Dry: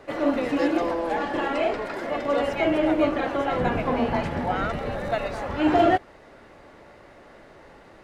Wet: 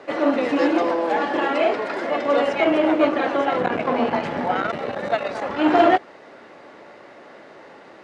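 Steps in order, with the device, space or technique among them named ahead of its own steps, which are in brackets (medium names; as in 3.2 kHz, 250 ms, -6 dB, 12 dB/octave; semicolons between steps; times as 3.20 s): public-address speaker with an overloaded transformer (transformer saturation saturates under 590 Hz; band-pass 220–6600 Hz); trim +5.5 dB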